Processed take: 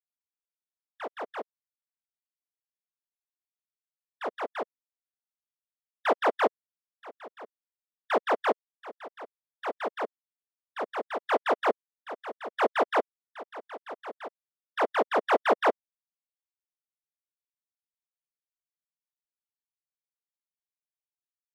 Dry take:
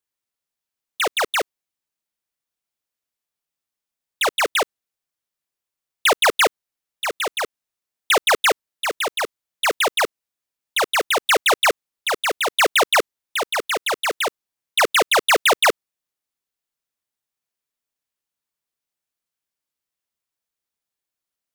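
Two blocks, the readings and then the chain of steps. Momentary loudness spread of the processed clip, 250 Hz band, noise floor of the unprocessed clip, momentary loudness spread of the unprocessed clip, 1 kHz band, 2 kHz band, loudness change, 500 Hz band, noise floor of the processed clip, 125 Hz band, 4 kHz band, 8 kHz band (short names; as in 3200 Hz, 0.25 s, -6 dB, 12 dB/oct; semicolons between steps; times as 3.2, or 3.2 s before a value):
20 LU, -4.0 dB, under -85 dBFS, 11 LU, -8.0 dB, -14.5 dB, -10.0 dB, -6.5 dB, under -85 dBFS, n/a, -22.5 dB, under -30 dB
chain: cycle switcher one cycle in 2, muted; spectral expander 2.5:1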